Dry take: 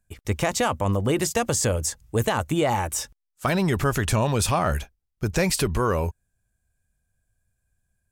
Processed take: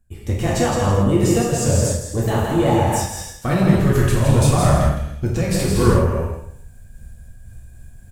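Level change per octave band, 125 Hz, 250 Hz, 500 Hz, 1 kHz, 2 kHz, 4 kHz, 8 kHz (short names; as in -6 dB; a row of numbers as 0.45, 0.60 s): +9.0, +8.0, +5.5, +3.0, +0.5, +1.0, +2.0 dB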